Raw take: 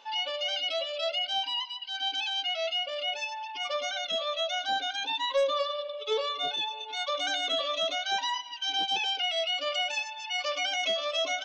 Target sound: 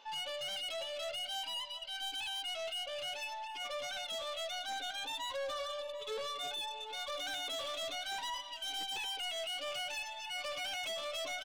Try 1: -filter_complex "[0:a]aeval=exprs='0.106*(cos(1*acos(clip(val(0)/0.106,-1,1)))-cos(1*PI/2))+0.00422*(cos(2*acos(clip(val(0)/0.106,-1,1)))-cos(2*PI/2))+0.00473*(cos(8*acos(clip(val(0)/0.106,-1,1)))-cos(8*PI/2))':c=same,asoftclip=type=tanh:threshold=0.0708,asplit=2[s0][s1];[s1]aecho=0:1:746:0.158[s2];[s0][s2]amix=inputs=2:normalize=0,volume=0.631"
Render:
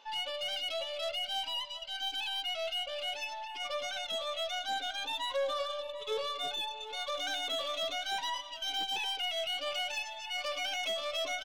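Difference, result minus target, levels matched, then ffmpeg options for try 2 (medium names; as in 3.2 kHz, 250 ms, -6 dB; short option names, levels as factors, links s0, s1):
saturation: distortion -11 dB
-filter_complex "[0:a]aeval=exprs='0.106*(cos(1*acos(clip(val(0)/0.106,-1,1)))-cos(1*PI/2))+0.00422*(cos(2*acos(clip(val(0)/0.106,-1,1)))-cos(2*PI/2))+0.00473*(cos(8*acos(clip(val(0)/0.106,-1,1)))-cos(8*PI/2))':c=same,asoftclip=type=tanh:threshold=0.0237,asplit=2[s0][s1];[s1]aecho=0:1:746:0.158[s2];[s0][s2]amix=inputs=2:normalize=0,volume=0.631"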